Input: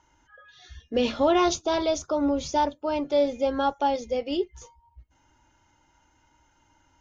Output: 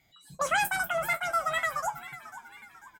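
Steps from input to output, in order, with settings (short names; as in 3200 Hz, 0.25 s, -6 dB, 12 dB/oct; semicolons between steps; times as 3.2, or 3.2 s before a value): spectral trails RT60 0.32 s; speed mistake 33 rpm record played at 78 rpm; frequency-shifting echo 0.494 s, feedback 48%, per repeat +86 Hz, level -15 dB; gain -5 dB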